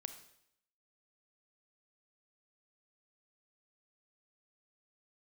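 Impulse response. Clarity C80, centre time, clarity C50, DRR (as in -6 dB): 13.0 dB, 11 ms, 10.0 dB, 8.5 dB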